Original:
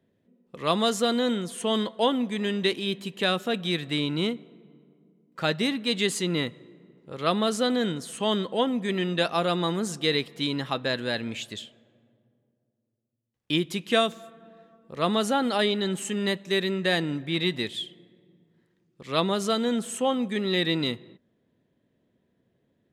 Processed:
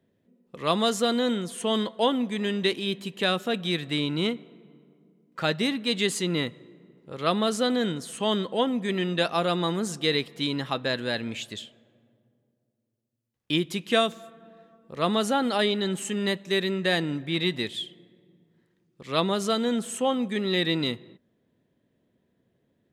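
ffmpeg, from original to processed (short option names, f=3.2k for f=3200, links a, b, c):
-filter_complex "[0:a]asettb=1/sr,asplit=3[a][b][c];[a]atrim=end=4.254[d];[b]atrim=start=4.25:end=5.43,asetpts=PTS-STARTPTS,afade=t=in:d=0.004:c=qsin,afade=t=out:st=1.176:d=0.004:c=qsin,equalizer=f=1.7k:t=o:w=2.8:g=3.5[e];[c]atrim=start=5.426[f];[d][e]acrossfade=d=0.004:c1=hsin:c2=qsin[g];[g][f]acrossfade=d=0.004:c1=qsin:c2=hsin"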